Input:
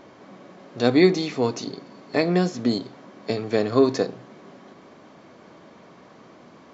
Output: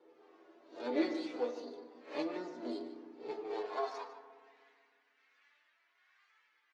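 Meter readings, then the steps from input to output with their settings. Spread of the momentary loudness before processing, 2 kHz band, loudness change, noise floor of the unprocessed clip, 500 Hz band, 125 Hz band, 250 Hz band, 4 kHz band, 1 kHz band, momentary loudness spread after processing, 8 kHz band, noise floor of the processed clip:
17 LU, −17.0 dB, −17.5 dB, −50 dBFS, −16.5 dB, below −35 dB, −17.5 dB, −19.0 dB, −11.5 dB, 16 LU, can't be measured, −75 dBFS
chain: peak hold with a rise ahead of every peak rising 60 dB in 0.37 s
two-band tremolo in antiphase 1.2 Hz, depth 50%, crossover 520 Hz
half-wave rectification
flanger 0.31 Hz, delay 2.2 ms, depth 2.1 ms, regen +30%
stiff-string resonator 80 Hz, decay 0.21 s, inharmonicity 0.002
flanger 1.3 Hz, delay 1.8 ms, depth 7.2 ms, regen −74%
high-pass filter sweep 380 Hz → 1,900 Hz, 0:03.50–0:04.31
high-frequency loss of the air 98 metres
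slap from a distant wall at 26 metres, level −13 dB
feedback delay network reverb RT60 1.9 s, low-frequency decay 1.45×, high-frequency decay 0.35×, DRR 10 dB
level +1.5 dB

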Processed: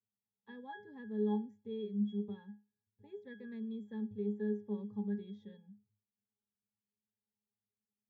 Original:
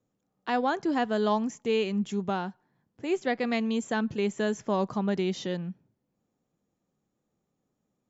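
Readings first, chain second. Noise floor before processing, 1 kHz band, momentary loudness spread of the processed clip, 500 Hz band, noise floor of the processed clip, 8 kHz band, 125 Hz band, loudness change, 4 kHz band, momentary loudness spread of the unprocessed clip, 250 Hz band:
−81 dBFS, −22.0 dB, 17 LU, −13.5 dB, below −85 dBFS, can't be measured, −9.0 dB, −11.0 dB, below −20 dB, 7 LU, −9.0 dB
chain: noise reduction from a noise print of the clip's start 8 dB
dynamic equaliser 800 Hz, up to −7 dB, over −44 dBFS, Q 2.5
resonances in every octave G#, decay 0.27 s
level −1.5 dB

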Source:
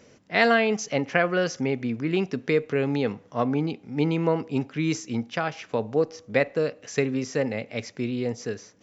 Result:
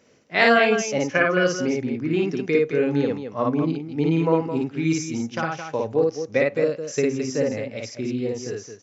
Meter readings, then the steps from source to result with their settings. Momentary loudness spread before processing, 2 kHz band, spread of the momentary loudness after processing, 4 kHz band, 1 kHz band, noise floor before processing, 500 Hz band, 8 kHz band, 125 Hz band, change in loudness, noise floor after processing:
8 LU, +3.5 dB, 9 LU, +3.0 dB, +3.0 dB, −55 dBFS, +3.5 dB, can't be measured, +1.5 dB, +3.5 dB, −46 dBFS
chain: noise reduction from a noise print of the clip's start 7 dB
low-shelf EQ 130 Hz −7.5 dB
on a send: loudspeakers that aren't time-aligned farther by 19 metres −1 dB, 74 metres −8 dB
on the sum: level +2 dB

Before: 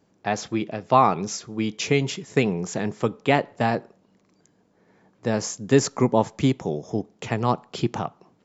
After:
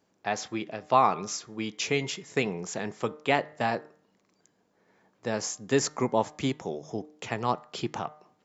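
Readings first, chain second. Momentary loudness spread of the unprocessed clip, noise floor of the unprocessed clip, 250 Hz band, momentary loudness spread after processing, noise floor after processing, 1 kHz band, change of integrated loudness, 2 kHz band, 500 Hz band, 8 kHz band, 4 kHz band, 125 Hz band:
10 LU, −64 dBFS, −8.5 dB, 10 LU, −71 dBFS, −4.0 dB, −5.5 dB, −3.0 dB, −5.5 dB, can't be measured, −2.5 dB, −10.5 dB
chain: low-shelf EQ 350 Hz −9 dB
hum removal 151.7 Hz, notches 14
level −2.5 dB

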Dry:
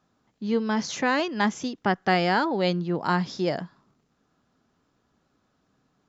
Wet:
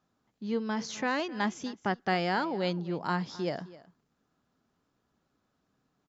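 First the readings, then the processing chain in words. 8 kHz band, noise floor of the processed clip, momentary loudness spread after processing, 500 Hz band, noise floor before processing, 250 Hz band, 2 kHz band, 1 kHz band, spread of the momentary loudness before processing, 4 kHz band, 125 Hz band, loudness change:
can't be measured, −78 dBFS, 6 LU, −6.5 dB, −72 dBFS, −6.5 dB, −6.5 dB, −6.5 dB, 6 LU, −6.5 dB, −6.5 dB, −6.5 dB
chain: single-tap delay 261 ms −19 dB
level −6.5 dB

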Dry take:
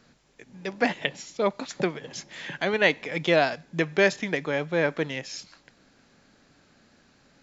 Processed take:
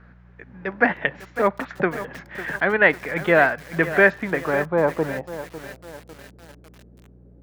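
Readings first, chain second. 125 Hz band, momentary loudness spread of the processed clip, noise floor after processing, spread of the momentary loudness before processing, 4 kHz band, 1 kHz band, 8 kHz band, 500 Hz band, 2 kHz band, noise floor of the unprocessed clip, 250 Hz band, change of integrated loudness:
+3.5 dB, 17 LU, −50 dBFS, 15 LU, −7.0 dB, +6.5 dB, can't be measured, +4.5 dB, +7.5 dB, −61 dBFS, +3.5 dB, +5.0 dB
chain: low-pass filter sweep 1,600 Hz → 420 Hz, 0:04.07–0:06.36
hum with harmonics 60 Hz, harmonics 3, −53 dBFS −3 dB per octave
feedback echo at a low word length 551 ms, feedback 55%, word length 6 bits, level −12.5 dB
level +3 dB

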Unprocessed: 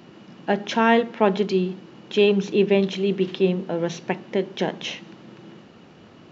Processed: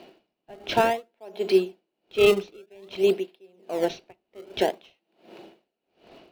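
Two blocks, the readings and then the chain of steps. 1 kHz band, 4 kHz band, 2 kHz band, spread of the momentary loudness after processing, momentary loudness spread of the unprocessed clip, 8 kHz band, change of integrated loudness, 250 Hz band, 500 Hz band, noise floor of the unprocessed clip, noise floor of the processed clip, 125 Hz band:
−4.0 dB, −3.5 dB, −5.0 dB, 20 LU, 11 LU, can't be measured, −2.5 dB, −8.5 dB, −2.5 dB, −48 dBFS, −82 dBFS, −13.5 dB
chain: loudspeaker in its box 380–5,400 Hz, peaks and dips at 390 Hz +5 dB, 670 Hz +9 dB, 1,200 Hz −8 dB, 1,800 Hz −4 dB, 2,500 Hz +4 dB, 4,300 Hz +4 dB
in parallel at −10.5 dB: sample-and-hold swept by an LFO 30×, swing 160% 0.53 Hz
on the sum: tremolo with a sine in dB 1.3 Hz, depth 36 dB

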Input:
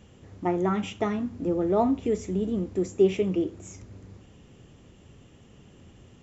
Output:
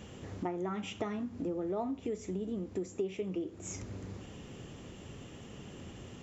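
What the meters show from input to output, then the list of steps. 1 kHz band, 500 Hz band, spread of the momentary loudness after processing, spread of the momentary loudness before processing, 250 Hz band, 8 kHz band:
−11.0 dB, −11.5 dB, 13 LU, 10 LU, −10.0 dB, can't be measured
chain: downward compressor 5 to 1, threshold −41 dBFS, peak gain reduction 22.5 dB
low-shelf EQ 120 Hz −6.5 dB
level +6.5 dB

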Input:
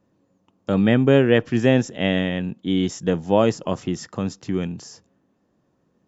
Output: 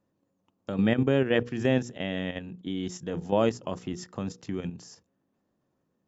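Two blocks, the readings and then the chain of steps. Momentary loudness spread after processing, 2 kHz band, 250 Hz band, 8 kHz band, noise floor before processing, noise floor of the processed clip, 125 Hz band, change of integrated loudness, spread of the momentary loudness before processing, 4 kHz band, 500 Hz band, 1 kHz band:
12 LU, −7.5 dB, −8.0 dB, can't be measured, −68 dBFS, −77 dBFS, −8.5 dB, −8.0 dB, 13 LU, −8.0 dB, −8.0 dB, −7.0 dB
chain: mains-hum notches 60/120/180/240/300/360/420/480 Hz
output level in coarse steps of 9 dB
level −4 dB

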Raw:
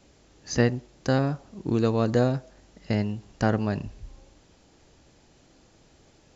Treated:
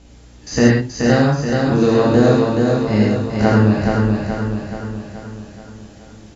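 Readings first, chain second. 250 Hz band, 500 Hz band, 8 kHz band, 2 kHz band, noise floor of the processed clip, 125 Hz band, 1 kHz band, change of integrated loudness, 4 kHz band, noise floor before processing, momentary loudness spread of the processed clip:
+12.5 dB, +11.5 dB, can't be measured, +12.0 dB, −43 dBFS, +10.5 dB, +11.0 dB, +10.5 dB, +11.0 dB, −59 dBFS, 15 LU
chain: spectrum averaged block by block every 50 ms
mains hum 60 Hz, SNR 27 dB
repeating echo 427 ms, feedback 54%, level −3.5 dB
reverb whose tail is shaped and stops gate 150 ms flat, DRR −3.5 dB
level +5.5 dB

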